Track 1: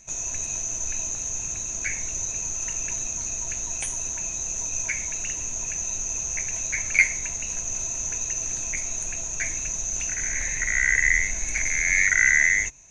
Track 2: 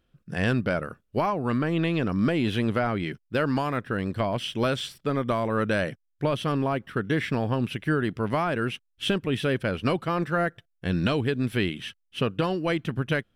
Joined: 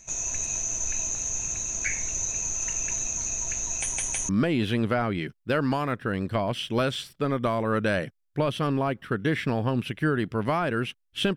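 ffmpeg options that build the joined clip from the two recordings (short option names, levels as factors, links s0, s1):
-filter_complex "[0:a]apad=whole_dur=11.36,atrim=end=11.36,asplit=3[s0][s1][s2];[s0]atrim=end=3.972[s3];[s1]atrim=start=3.808:end=3.972[s4];[s2]atrim=start=3.808:end=3.972[s5];[1:a]atrim=start=2.138:end=9.21[s6];[s3][s4]acrossfade=d=0.004:c1=hsin:c2=hsin[s7];[s7][s5]acrossfade=d=0.004:c1=hsin:c2=hsin[s8];[s8][s6]acrossfade=d=0.004:c1=hsin:c2=hsin"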